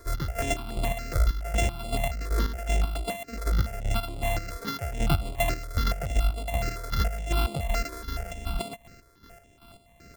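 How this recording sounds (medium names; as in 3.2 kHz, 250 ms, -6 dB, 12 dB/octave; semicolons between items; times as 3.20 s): a buzz of ramps at a fixed pitch in blocks of 64 samples; chopped level 2.6 Hz, depth 65%, duty 40%; notches that jump at a steady rate 7.1 Hz 780–6000 Hz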